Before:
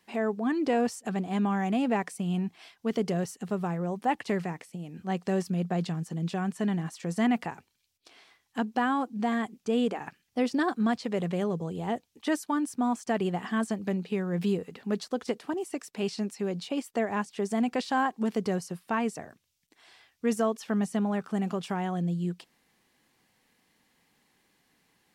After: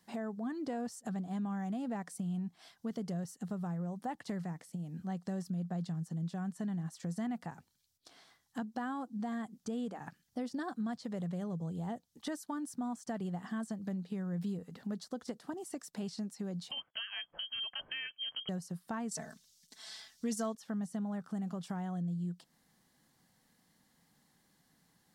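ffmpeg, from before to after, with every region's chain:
-filter_complex "[0:a]asettb=1/sr,asplit=3[a][b][c];[a]atrim=end=16.714[d];[b]atrim=start=16.71:end=18.49,asetpts=PTS-STARTPTS,afade=t=in:d=0.004:c=qsin,afade=t=out:st=1.776:d=0.004:c=qsin,bandreject=f=2k:w=23,lowpass=f=2.9k:t=q:w=0.5098,lowpass=f=2.9k:t=q:w=0.6013,lowpass=f=2.9k:t=q:w=0.9,lowpass=f=2.9k:t=q:w=2.563,afreqshift=-3400[e];[c]atrim=start=18.486[f];[d][e]acrossfade=d=0.004:c1=hsin:c2=qsin[g];[g][f]acrossfade=d=0.004:c1=qsin:c2=hsin,asettb=1/sr,asplit=3[h][i][j];[h]atrim=end=19.114[k];[i]atrim=start=19.11:end=20.55,asetpts=PTS-STARTPTS,afade=t=in:d=0.004:c=qsin,afade=t=out:st=1.436:d=0.004:c=qsin,equalizer=f=5.4k:w=0.45:g=13,aecho=1:1:4.6:0.91,atrim=end_sample=63504,asoftclip=type=hard:threshold=-10.5dB[l];[j]atrim=start=20.546[m];[k][l]acrossfade=d=0.004:c1=hsin:c2=qsin[n];[n][m]acrossfade=d=0.004:c1=qsin:c2=hsin,equalizer=f=160:t=o:w=0.67:g=5,equalizer=f=400:t=o:w=0.67:g=-7,equalizer=f=1k:t=o:w=0.67:g=-3,equalizer=f=2.5k:t=o:w=0.67:g=-12,acompressor=threshold=-40dB:ratio=2.5"

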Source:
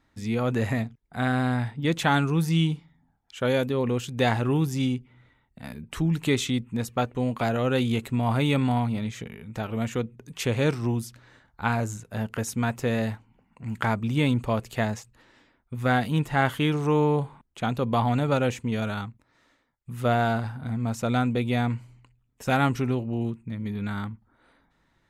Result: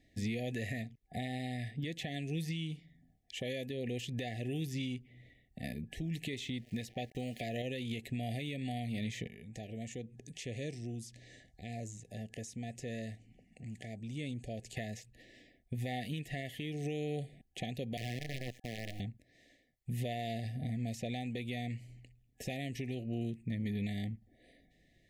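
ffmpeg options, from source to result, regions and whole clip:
-filter_complex "[0:a]asettb=1/sr,asplit=3[a][b][c];[a]atrim=end=6.334[d];[b]atrim=start=6.33:end=7.62,asetpts=PTS-STARTPTS,afade=t=in:d=0.004:c=qsin,afade=t=out:st=1.286:d=0.004:c=qsin,acontrast=28,aeval=exprs='val(0)*gte(abs(val(0)),0.00631)':c=same[e];[c]atrim=start=7.616[f];[d][e]acrossfade=d=0.004:c1=hsin:c2=qsin[g];[g][f]acrossfade=d=0.004:c1=qsin:c2=hsin,asettb=1/sr,asplit=3[h][i][j];[h]atrim=end=9.274[k];[i]atrim=start=9.27:end=14.77,asetpts=PTS-STARTPTS,afade=t=in:d=0.004:c=qsin,afade=t=out:st=5.496:d=0.004:c=qsin,equalizer=f=7k:t=o:w=1.1:g=8,acompressor=threshold=-51dB:ratio=2:attack=3.2:release=140:knee=1:detection=peak,lowpass=f=11k:w=0.5412,lowpass=f=11k:w=1.3066[l];[j]atrim=start=14.766[m];[k][l]acrossfade=d=0.004:c1=hsin:c2=qsin[n];[n][m]acrossfade=d=0.004:c1=qsin:c2=hsin,asettb=1/sr,asplit=3[o][p][q];[o]atrim=end=17.974[r];[p]atrim=start=17.97:end=19,asetpts=PTS-STARTPTS,afade=t=in:d=0.004:c=qsin,afade=t=out:st=1.026:d=0.004:c=qsin,highshelf=f=1.8k:t=q:w=3:g=-8.5,acrossover=split=190|3000[s][t][u];[t]acompressor=threshold=-38dB:ratio=5:attack=3.2:release=140:knee=2.83:detection=peak[v];[s][v][u]amix=inputs=3:normalize=0,acrusher=bits=5:dc=4:mix=0:aa=0.000001[w];[q]atrim=start=18.996[x];[r][w]acrossfade=d=0.004:c1=hsin:c2=qsin[y];[y][x]acrossfade=d=0.004:c1=qsin:c2=hsin,afftfilt=real='re*(1-between(b*sr/4096,770,1700))':imag='im*(1-between(b*sr/4096,770,1700))':win_size=4096:overlap=0.75,acrossover=split=1300|4400[z][aa][ab];[z]acompressor=threshold=-32dB:ratio=4[ac];[aa]acompressor=threshold=-37dB:ratio=4[ad];[ab]acompressor=threshold=-51dB:ratio=4[ae];[ac][ad][ae]amix=inputs=3:normalize=0,alimiter=level_in=4.5dB:limit=-24dB:level=0:latency=1:release=444,volume=-4.5dB"

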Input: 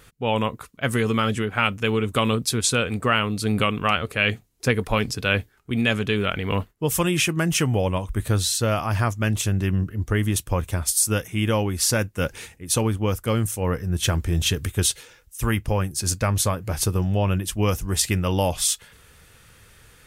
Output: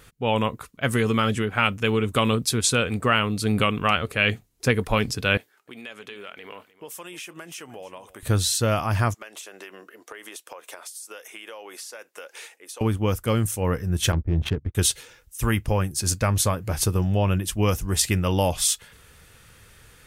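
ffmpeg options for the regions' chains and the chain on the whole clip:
-filter_complex "[0:a]asettb=1/sr,asplit=3[a][b][c];[a]atrim=end=5.374[d];[b]atrim=start=5.37:end=8.23,asetpts=PTS-STARTPTS,afade=t=in:d=0.004:c=qsin,afade=t=out:st=2.856:d=0.004:c=qsin,highpass=430,acompressor=threshold=-40dB:ratio=3:attack=3.2:release=140:knee=1:detection=peak,aecho=1:1:306:0.133,atrim=end_sample=126126[e];[c]atrim=start=8.226[f];[d][e]acrossfade=d=0.004:c1=hsin:c2=qsin[g];[g][f]acrossfade=d=0.004:c1=qsin:c2=hsin,asettb=1/sr,asplit=3[h][i][j];[h]atrim=end=9.144[k];[i]atrim=start=9.14:end=12.81,asetpts=PTS-STARTPTS,afade=t=in:d=0.004:c=qsin,afade=t=out:st=3.666:d=0.004:c=qsin,highpass=f=450:w=0.5412,highpass=f=450:w=1.3066,highshelf=f=12k:g=-5,acompressor=threshold=-35dB:ratio=16:attack=3.2:release=140:knee=1:detection=peak[l];[j]atrim=start=12.806[m];[k][l]acrossfade=d=0.004:c1=hsin:c2=qsin[n];[n][m]acrossfade=d=0.004:c1=qsin:c2=hsin,asettb=1/sr,asplit=3[o][p][q];[o]atrim=end=14.124[r];[p]atrim=start=14.12:end=14.75,asetpts=PTS-STARTPTS,afade=t=in:d=0.004:c=qsin,afade=t=out:st=0.626:d=0.004:c=qsin,agate=range=-22dB:threshold=-29dB:ratio=16:release=100:detection=peak,adynamicsmooth=sensitivity=1:basefreq=620[s];[q]atrim=start=14.746[t];[r][s]acrossfade=d=0.004:c1=hsin:c2=qsin[u];[u][t]acrossfade=d=0.004:c1=qsin:c2=hsin"

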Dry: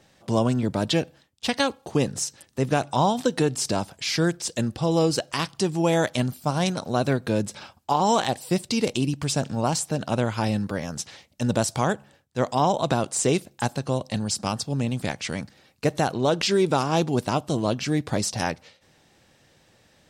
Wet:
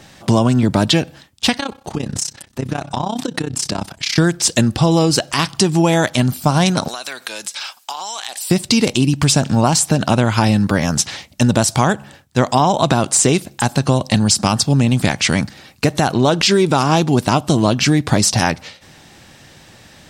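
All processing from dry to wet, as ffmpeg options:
-filter_complex "[0:a]asettb=1/sr,asplit=3[a][b][c];[a]atrim=end=1.574[d];[b]atrim=start=1.57:end=4.18,asetpts=PTS-STARTPTS,afade=t=in:d=0.004:c=qsin,afade=t=out:st=2.606:d=0.004:c=qsin,highshelf=f=7.7k:g=-5,tremolo=f=32:d=0.889,acompressor=threshold=-32dB:ratio=6:attack=3.2:release=140:knee=1:detection=peak[e];[c]atrim=start=4.176[f];[d][e]acrossfade=d=0.004:c1=hsin:c2=qsin[g];[g][f]acrossfade=d=0.004:c1=qsin:c2=hsin,asettb=1/sr,asplit=3[h][i][j];[h]atrim=end=6.884[k];[i]atrim=start=6.88:end=8.5,asetpts=PTS-STARTPTS,afade=t=in:d=0.004:c=qsin,afade=t=out:st=1.616:d=0.004:c=qsin,highpass=550,tiltshelf=f=1.4k:g=-8,acompressor=threshold=-38dB:ratio=12:attack=3.2:release=140:knee=1:detection=peak[l];[j]atrim=start=8.496[m];[k][l]acrossfade=d=0.004:c1=hsin:c2=qsin[n];[n][m]acrossfade=d=0.004:c1=qsin:c2=hsin,equalizer=f=490:t=o:w=0.7:g=-5.5,acompressor=threshold=-26dB:ratio=6,alimiter=level_in=17dB:limit=-1dB:release=50:level=0:latency=1,volume=-1dB"

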